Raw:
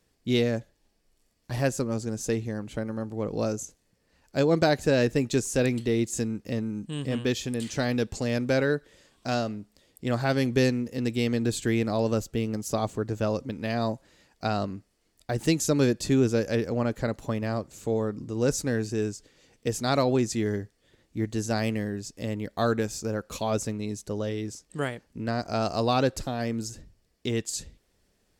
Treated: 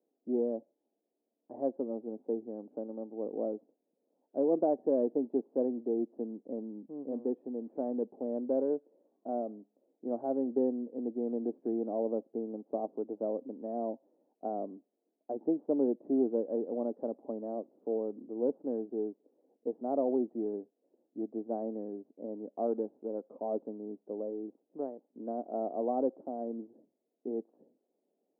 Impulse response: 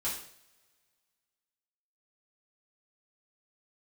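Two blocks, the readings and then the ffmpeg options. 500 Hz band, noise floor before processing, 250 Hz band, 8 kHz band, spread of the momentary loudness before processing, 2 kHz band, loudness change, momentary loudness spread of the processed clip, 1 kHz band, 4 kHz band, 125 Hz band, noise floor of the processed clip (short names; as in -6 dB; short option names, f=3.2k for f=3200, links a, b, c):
-5.0 dB, -70 dBFS, -7.0 dB, under -40 dB, 10 LU, under -40 dB, -7.5 dB, 12 LU, -8.5 dB, under -40 dB, under -25 dB, -84 dBFS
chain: -af "aeval=exprs='0.422*(cos(1*acos(clip(val(0)/0.422,-1,1)))-cos(1*PI/2))+0.0237*(cos(4*acos(clip(val(0)/0.422,-1,1)))-cos(4*PI/2))':c=same,asuperpass=centerf=430:order=8:qfactor=0.8,volume=-5dB"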